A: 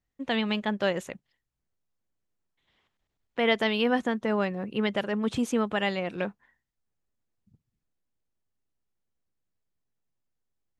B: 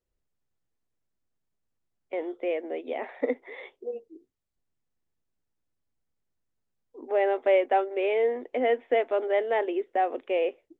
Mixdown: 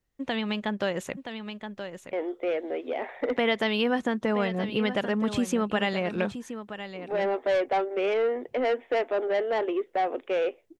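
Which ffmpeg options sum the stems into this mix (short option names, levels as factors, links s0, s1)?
-filter_complex "[0:a]acompressor=threshold=0.0282:ratio=2.5,volume=1.33,asplit=3[s0][s1][s2];[s1]volume=0.282[s3];[1:a]asoftclip=type=tanh:threshold=0.0708,volume=0.891[s4];[s2]apad=whole_len=475940[s5];[s4][s5]sidechaincompress=threshold=0.00631:ratio=8:attack=47:release=922[s6];[s3]aecho=0:1:973:1[s7];[s0][s6][s7]amix=inputs=3:normalize=0,dynaudnorm=f=110:g=17:m=1.5"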